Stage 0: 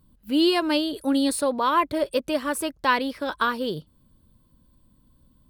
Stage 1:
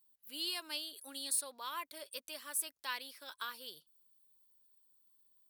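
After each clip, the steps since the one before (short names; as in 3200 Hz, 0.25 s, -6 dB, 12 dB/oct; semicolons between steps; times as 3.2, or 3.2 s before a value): differentiator; gain -5 dB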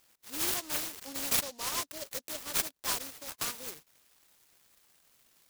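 noise-modulated delay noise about 5000 Hz, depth 0.19 ms; gain +7.5 dB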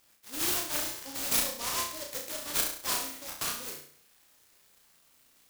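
flutter echo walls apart 5.8 m, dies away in 0.53 s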